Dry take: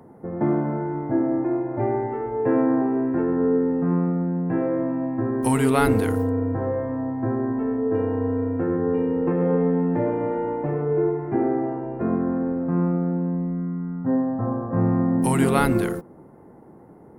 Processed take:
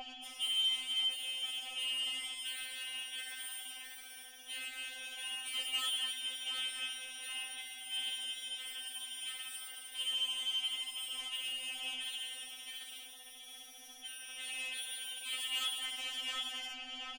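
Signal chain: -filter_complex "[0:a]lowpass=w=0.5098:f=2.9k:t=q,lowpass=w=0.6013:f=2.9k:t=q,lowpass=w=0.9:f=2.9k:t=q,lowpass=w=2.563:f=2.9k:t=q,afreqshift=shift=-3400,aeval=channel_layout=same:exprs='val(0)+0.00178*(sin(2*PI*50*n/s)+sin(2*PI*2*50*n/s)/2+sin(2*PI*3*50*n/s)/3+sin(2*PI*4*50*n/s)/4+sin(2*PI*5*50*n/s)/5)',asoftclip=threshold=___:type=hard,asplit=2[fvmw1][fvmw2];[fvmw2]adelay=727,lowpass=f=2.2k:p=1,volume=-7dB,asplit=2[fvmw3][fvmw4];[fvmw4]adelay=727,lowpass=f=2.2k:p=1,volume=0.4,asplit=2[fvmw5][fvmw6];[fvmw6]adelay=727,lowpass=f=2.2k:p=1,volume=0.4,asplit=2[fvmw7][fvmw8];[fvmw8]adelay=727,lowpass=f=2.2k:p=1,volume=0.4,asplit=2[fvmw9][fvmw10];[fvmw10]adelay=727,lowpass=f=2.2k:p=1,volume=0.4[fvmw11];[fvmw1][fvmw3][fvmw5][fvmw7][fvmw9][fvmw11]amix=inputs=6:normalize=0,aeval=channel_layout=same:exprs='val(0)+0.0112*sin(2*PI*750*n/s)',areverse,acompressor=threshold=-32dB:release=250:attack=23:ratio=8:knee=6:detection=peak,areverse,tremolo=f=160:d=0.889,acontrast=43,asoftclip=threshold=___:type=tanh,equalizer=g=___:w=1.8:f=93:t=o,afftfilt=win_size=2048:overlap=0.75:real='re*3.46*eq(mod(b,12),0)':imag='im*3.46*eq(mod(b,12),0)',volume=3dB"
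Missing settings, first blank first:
-20dB, -30.5dB, -5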